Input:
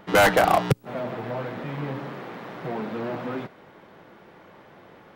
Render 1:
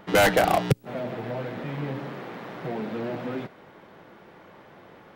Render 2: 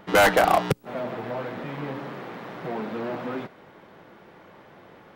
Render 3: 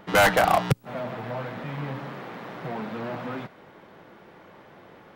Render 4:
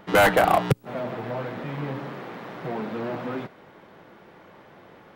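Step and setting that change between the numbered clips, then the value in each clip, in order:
dynamic bell, frequency: 1.1 kHz, 120 Hz, 370 Hz, 5.6 kHz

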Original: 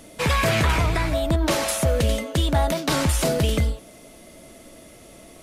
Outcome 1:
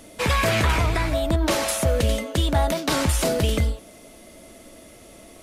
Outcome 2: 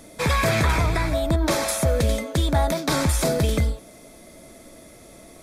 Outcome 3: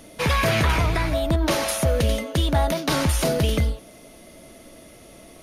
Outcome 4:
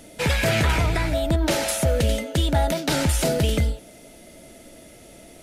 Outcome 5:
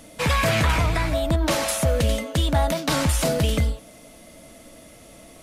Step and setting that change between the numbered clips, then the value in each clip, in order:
band-stop, frequency: 150 Hz, 2.9 kHz, 7.7 kHz, 1.1 kHz, 380 Hz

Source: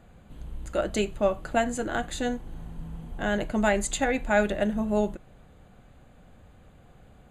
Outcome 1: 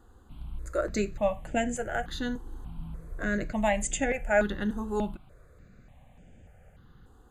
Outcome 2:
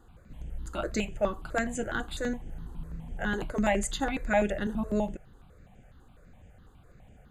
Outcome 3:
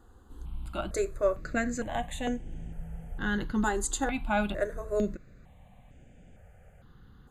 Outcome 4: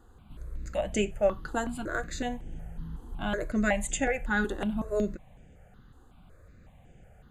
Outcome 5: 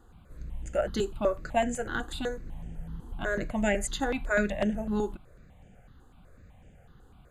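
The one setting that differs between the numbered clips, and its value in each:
stepped phaser, rate: 3.4 Hz, 12 Hz, 2.2 Hz, 5.4 Hz, 8 Hz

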